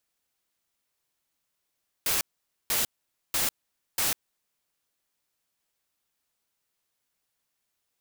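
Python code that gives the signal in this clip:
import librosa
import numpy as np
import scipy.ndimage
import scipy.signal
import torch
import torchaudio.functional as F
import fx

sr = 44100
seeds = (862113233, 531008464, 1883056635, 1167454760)

y = fx.noise_burst(sr, seeds[0], colour='white', on_s=0.15, off_s=0.49, bursts=4, level_db=-26.0)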